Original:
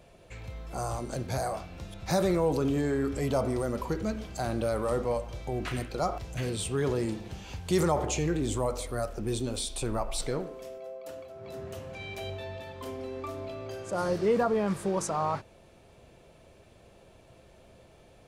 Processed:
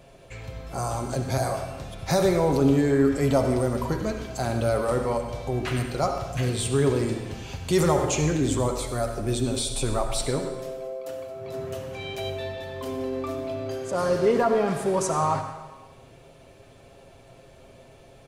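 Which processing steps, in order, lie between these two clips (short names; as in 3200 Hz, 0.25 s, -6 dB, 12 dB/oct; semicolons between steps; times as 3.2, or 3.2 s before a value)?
comb 7.4 ms, depth 42%; reverb RT60 1.1 s, pre-delay 60 ms, DRR 7 dB; gain +4 dB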